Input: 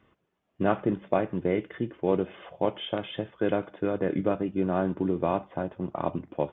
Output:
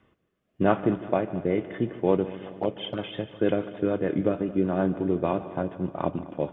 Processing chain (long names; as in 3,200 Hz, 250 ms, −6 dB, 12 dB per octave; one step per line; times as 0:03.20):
0:02.52–0:02.98: flanger swept by the level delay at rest 5.8 ms, full sweep at −22 dBFS
rotating-speaker cabinet horn 0.9 Hz, later 6.7 Hz, at 0:02.20
on a send: echo machine with several playback heads 74 ms, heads second and third, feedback 64%, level −18 dB
on the sum: level +3.5 dB